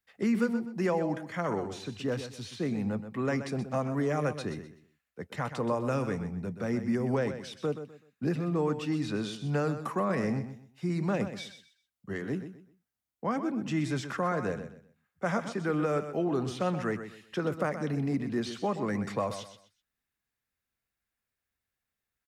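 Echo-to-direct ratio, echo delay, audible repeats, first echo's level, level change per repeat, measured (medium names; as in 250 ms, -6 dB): -10.0 dB, 126 ms, 3, -10.5 dB, -11.5 dB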